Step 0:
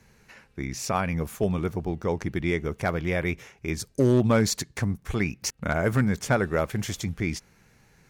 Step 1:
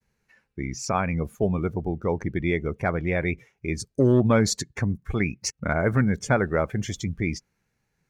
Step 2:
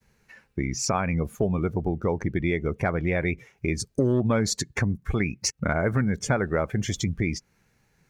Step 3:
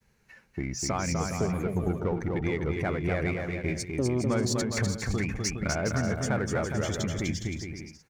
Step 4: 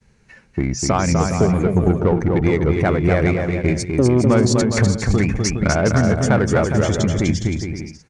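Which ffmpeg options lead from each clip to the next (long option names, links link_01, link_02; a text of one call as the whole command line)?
ffmpeg -i in.wav -af "agate=range=-33dB:threshold=-57dB:ratio=3:detection=peak,afftdn=noise_reduction=17:noise_floor=-38,volume=1.5dB" out.wav
ffmpeg -i in.wav -af "acompressor=threshold=-35dB:ratio=2.5,volume=9dB" out.wav
ffmpeg -i in.wav -filter_complex "[0:a]asplit=2[link_01][link_02];[link_02]asoftclip=type=tanh:threshold=-28dB,volume=-3dB[link_03];[link_01][link_03]amix=inputs=2:normalize=0,aecho=1:1:250|412.5|518.1|586.8|631.4:0.631|0.398|0.251|0.158|0.1,volume=-7.5dB" out.wav
ffmpeg -i in.wav -filter_complex "[0:a]asplit=2[link_01][link_02];[link_02]adynamicsmooth=sensitivity=2.5:basefreq=600,volume=-3dB[link_03];[link_01][link_03]amix=inputs=2:normalize=0,aresample=22050,aresample=44100,volume=8dB" out.wav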